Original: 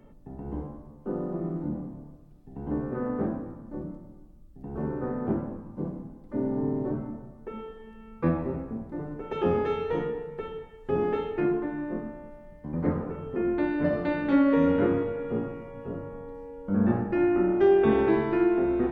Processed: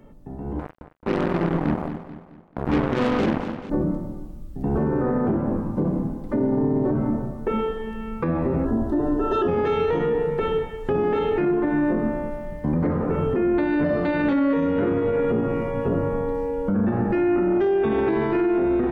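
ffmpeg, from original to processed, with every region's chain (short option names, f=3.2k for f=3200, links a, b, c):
-filter_complex "[0:a]asettb=1/sr,asplit=3[a][b][c];[a]atrim=end=0.594[d];[b]atrim=start=0.59:end=3.7,asetpts=PTS-STARTPTS,afade=t=in:d=0.004:c=qsin,afade=t=out:st=3.106:d=0.004:c=qsin,acrusher=bits=4:mix=0:aa=0.5,aecho=1:1:218|436|654|872:0.141|0.0593|0.0249|0.0105,atrim=end_sample=137151[e];[c]atrim=start=3.696[f];[d][e]acrossfade=d=0.004:c1=hsin:c2=qsin[g];[g][f]acrossfade=d=0.004:c1=qsin:c2=hsin,asettb=1/sr,asplit=3[h][i][j];[h]atrim=end=8.654[k];[i]atrim=start=8.65:end=9.48,asetpts=PTS-STARTPTS,afade=t=in:d=0.004:c=qsin,afade=t=out:st=0.826:d=0.004:c=qsin,asuperstop=centerf=2300:order=12:qfactor=3,aecho=1:1:3:0.88,atrim=end_sample=36603[l];[j]atrim=start=9.476[m];[k][l]acrossfade=d=0.004:c1=hsin:c2=qsin[n];[n][m]acrossfade=d=0.004:c1=qsin:c2=hsin,acompressor=threshold=-32dB:ratio=6,alimiter=level_in=6dB:limit=-24dB:level=0:latency=1:release=16,volume=-6dB,dynaudnorm=f=450:g=3:m=11dB,volume=4.5dB"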